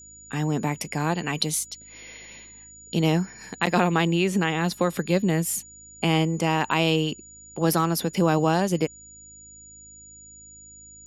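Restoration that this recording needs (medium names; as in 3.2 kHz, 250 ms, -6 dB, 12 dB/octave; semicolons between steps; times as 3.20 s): de-hum 52.8 Hz, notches 6; band-stop 6.9 kHz, Q 30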